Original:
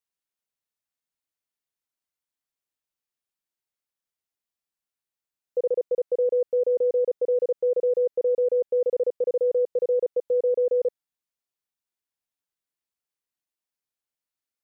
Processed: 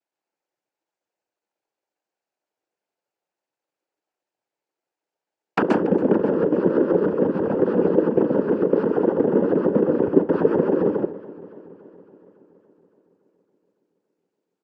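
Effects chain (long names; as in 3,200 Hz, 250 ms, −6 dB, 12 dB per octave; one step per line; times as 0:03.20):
leveller curve on the samples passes 3
low-shelf EQ 180 Hz +4 dB
notch filter 500 Hz, Q 14
pitch shifter −7.5 semitones
wrap-around overflow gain 21 dB
flat-topped bell 530 Hz +11 dB 1.3 octaves
treble cut that deepens with the level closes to 300 Hz, closed at −21 dBFS
convolution reverb RT60 0.25 s, pre-delay 125 ms, DRR 2 dB
cochlear-implant simulation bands 8
feedback echo with a swinging delay time 281 ms, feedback 65%, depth 78 cents, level −19 dB
level −1 dB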